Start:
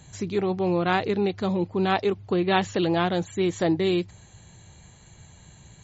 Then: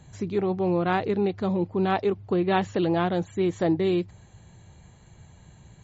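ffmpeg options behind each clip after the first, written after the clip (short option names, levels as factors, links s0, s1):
-af "highshelf=f=2300:g=-9.5"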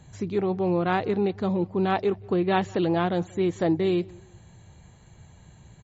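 -filter_complex "[0:a]asplit=2[s0][s1];[s1]adelay=183,lowpass=f=2600:p=1,volume=0.0631,asplit=2[s2][s3];[s3]adelay=183,lowpass=f=2600:p=1,volume=0.31[s4];[s0][s2][s4]amix=inputs=3:normalize=0"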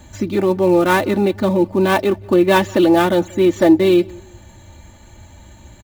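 -filter_complex "[0:a]aecho=1:1:3.4:0.89,acrossover=split=970[s0][s1];[s1]acrusher=bits=2:mode=log:mix=0:aa=0.000001[s2];[s0][s2]amix=inputs=2:normalize=0,volume=2.66"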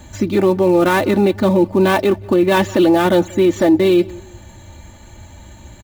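-af "alimiter=limit=0.376:level=0:latency=1:release=11,volume=1.41"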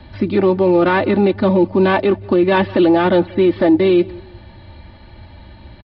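-filter_complex "[0:a]acrossover=split=300|1600|4000[s0][s1][s2][s3];[s3]acompressor=threshold=0.00562:ratio=6[s4];[s0][s1][s2][s4]amix=inputs=4:normalize=0,aresample=11025,aresample=44100"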